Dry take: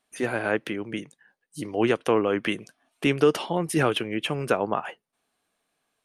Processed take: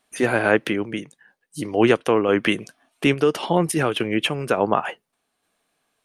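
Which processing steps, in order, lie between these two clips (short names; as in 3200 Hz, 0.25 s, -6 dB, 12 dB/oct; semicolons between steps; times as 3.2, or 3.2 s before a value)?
random-step tremolo 3.5 Hz; gain +7.5 dB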